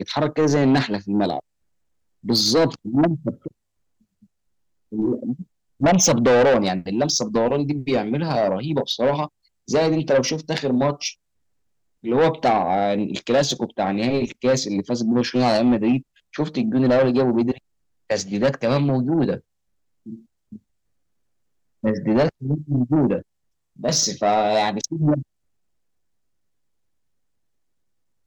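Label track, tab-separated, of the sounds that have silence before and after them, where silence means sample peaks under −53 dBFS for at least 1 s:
21.830000	25.230000	sound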